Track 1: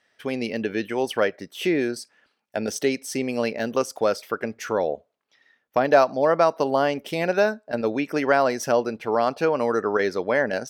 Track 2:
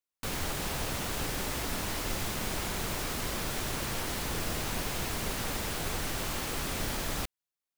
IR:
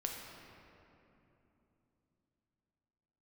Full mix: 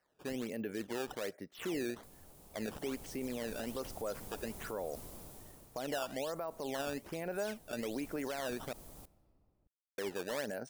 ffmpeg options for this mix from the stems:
-filter_complex "[0:a]highshelf=f=2800:g=-8.5,alimiter=limit=0.251:level=0:latency=1:release=103,acrusher=samples=12:mix=1:aa=0.000001:lfo=1:lforange=19.2:lforate=1.2,volume=0.335,asplit=3[s0][s1][s2];[s0]atrim=end=8.73,asetpts=PTS-STARTPTS,afade=t=out:st=8.726:d=0.004:c=hsin[s3];[s1]atrim=start=8.73:end=9.98,asetpts=PTS-STARTPTS,volume=0[s4];[s2]atrim=start=9.98,asetpts=PTS-STARTPTS,afade=t=in:d=0.004:c=hsin[s5];[s3][s4][s5]concat=n=3:v=0:a=1[s6];[1:a]firequalizer=gain_entry='entry(700,0);entry(1600,-13);entry(10000,3)':delay=0.05:min_phase=1,acompressor=threshold=0.00708:ratio=1.5,adelay=1800,volume=0.631,afade=t=in:st=2.59:d=0.78:silence=0.334965,afade=t=out:st=5.05:d=0.65:silence=0.251189,afade=t=in:st=7.71:d=0.29:silence=0.421697,asplit=2[s7][s8];[s8]volume=0.266[s9];[2:a]atrim=start_sample=2205[s10];[s9][s10]afir=irnorm=-1:irlink=0[s11];[s6][s7][s11]amix=inputs=3:normalize=0,alimiter=level_in=2:limit=0.0631:level=0:latency=1:release=37,volume=0.501"

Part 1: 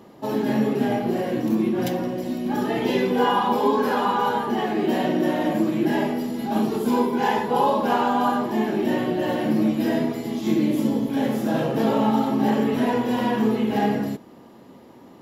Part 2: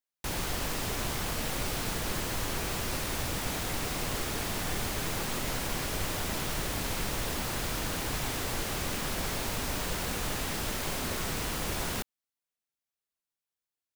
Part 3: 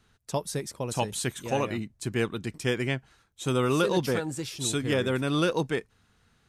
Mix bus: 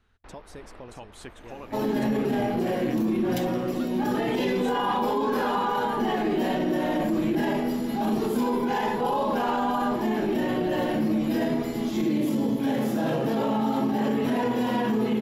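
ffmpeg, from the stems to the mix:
-filter_complex "[0:a]adelay=1500,volume=0.944[s0];[1:a]afwtdn=0.00794,lowpass=1800,volume=0.299[s1];[2:a]bass=f=250:g=6,treble=f=4000:g=-11,acompressor=threshold=0.0178:ratio=1.5,volume=0.708[s2];[s1][s2]amix=inputs=2:normalize=0,equalizer=f=140:t=o:w=0.95:g=-14.5,alimiter=level_in=1.88:limit=0.0631:level=0:latency=1:release=373,volume=0.531,volume=1[s3];[s0][s3]amix=inputs=2:normalize=0,alimiter=limit=0.133:level=0:latency=1:release=21"

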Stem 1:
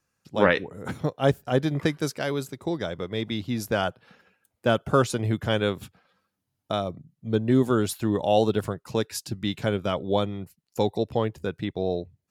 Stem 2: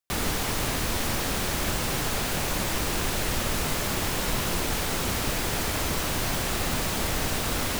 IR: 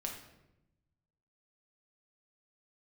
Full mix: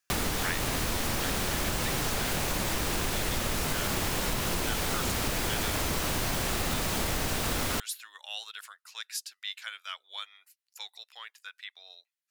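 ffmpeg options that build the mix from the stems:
-filter_complex "[0:a]highpass=f=1500:w=0.5412,highpass=f=1500:w=1.3066,volume=0.794[s0];[1:a]volume=1.33[s1];[s0][s1]amix=inputs=2:normalize=0,acompressor=threshold=0.0501:ratio=6"

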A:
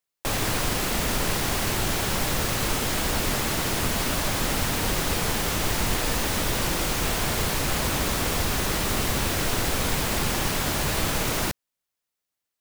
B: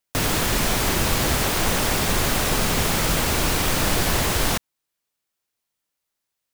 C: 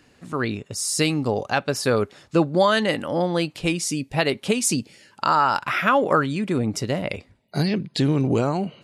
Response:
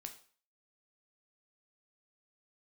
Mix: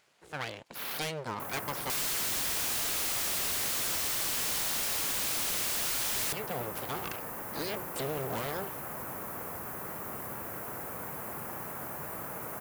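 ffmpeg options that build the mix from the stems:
-filter_complex "[0:a]firequalizer=gain_entry='entry(1200,0);entry(3600,-22);entry(13000,3)':delay=0.05:min_phase=1,adelay=1150,volume=0.299[s0];[1:a]adelay=1750,volume=1.19[s1];[2:a]aeval=exprs='abs(val(0))':c=same,volume=0.473[s2];[s0][s1][s2]amix=inputs=3:normalize=0,highpass=160,equalizer=f=270:w=0.91:g=-5.5,aeval=exprs='0.0447*(abs(mod(val(0)/0.0447+3,4)-2)-1)':c=same"

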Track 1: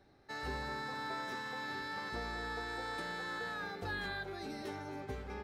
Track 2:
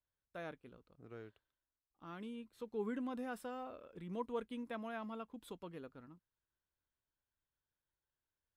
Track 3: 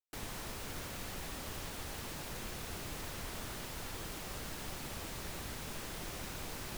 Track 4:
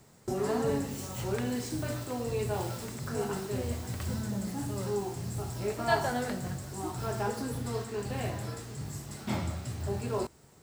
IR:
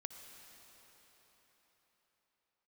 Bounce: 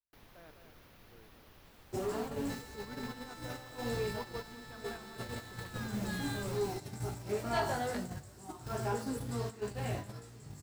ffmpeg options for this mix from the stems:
-filter_complex "[0:a]aemphasis=mode=production:type=75kf,adelay=2200,volume=0.531[s0];[1:a]volume=0.794,asplit=3[s1][s2][s3];[s2]volume=0.447[s4];[2:a]equalizer=f=7900:w=1.5:g=-13,volume=0.501[s5];[3:a]flanger=delay=17:depth=2.1:speed=2.2,adelay=1650,volume=1.06[s6];[s3]apad=whole_len=541262[s7];[s6][s7]sidechaincompress=threshold=0.00282:ratio=8:attack=40:release=221[s8];[s4]aecho=0:1:203:1[s9];[s0][s1][s5][s8][s9]amix=inputs=5:normalize=0,agate=range=0.355:threshold=0.0141:ratio=16:detection=peak,asoftclip=type=tanh:threshold=0.0596"

